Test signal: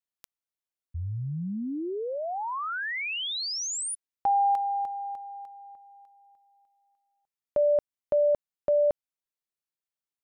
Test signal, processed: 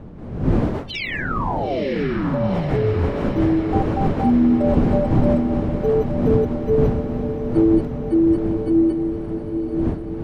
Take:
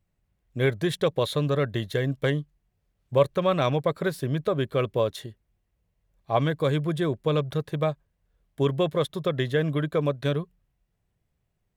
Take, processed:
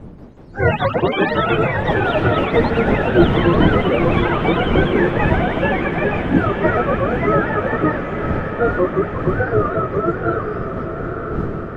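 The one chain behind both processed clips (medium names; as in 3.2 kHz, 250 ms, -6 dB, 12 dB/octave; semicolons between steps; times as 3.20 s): spectrum inverted on a logarithmic axis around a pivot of 440 Hz; wind noise 220 Hz -34 dBFS; ever faster or slower copies 184 ms, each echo +5 st, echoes 3; echo that smears into a reverb 920 ms, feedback 65%, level -7.5 dB; trim +7.5 dB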